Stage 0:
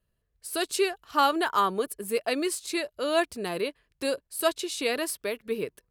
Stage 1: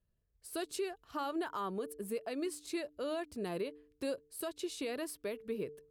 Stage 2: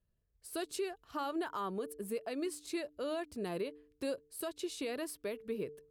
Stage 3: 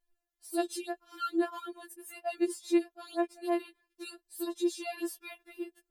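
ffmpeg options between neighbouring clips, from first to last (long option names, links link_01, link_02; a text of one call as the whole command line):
ffmpeg -i in.wav -af "tiltshelf=frequency=660:gain=4.5,bandreject=frequency=148.5:width_type=h:width=4,bandreject=frequency=297:width_type=h:width=4,bandreject=frequency=445.5:width_type=h:width=4,alimiter=limit=-21.5dB:level=0:latency=1:release=159,volume=-7dB" out.wav
ffmpeg -i in.wav -af anull out.wav
ffmpeg -i in.wav -af "afftfilt=real='re*4*eq(mod(b,16),0)':imag='im*4*eq(mod(b,16),0)':win_size=2048:overlap=0.75,volume=4.5dB" out.wav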